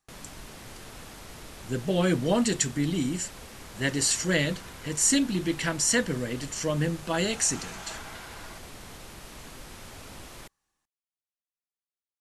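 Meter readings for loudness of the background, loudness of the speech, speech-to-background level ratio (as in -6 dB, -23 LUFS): -44.5 LUFS, -26.5 LUFS, 18.0 dB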